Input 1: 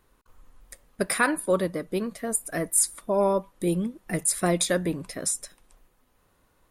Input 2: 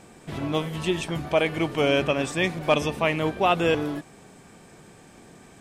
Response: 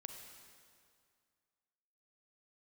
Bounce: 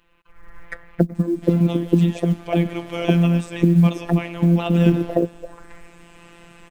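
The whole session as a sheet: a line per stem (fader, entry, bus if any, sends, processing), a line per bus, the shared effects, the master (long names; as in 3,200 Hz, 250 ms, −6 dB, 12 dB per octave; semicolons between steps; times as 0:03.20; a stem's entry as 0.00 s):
+2.5 dB, 0.00 s, no send, downward compressor 2 to 1, threshold −34 dBFS, peak gain reduction 9.5 dB; envelope-controlled low-pass 230–2,900 Hz down, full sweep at −30.5 dBFS
−9.0 dB, 1.15 s, send −9 dB, pitch modulation by a square or saw wave saw down 5.8 Hz, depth 100 cents; automatic ducking −11 dB, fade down 1.95 s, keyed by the first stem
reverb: on, RT60 2.2 s, pre-delay 33 ms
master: automatic gain control gain up to 16 dB; phases set to zero 171 Hz; log-companded quantiser 8 bits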